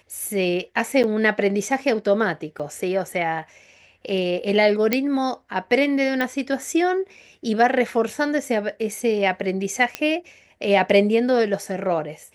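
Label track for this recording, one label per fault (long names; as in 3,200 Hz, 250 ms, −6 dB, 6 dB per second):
1.030000	1.040000	drop-out 8.4 ms
2.590000	2.600000	drop-out 5.9 ms
4.930000	4.930000	click −5 dBFS
6.210000	6.210000	click −12 dBFS
9.950000	9.950000	click −9 dBFS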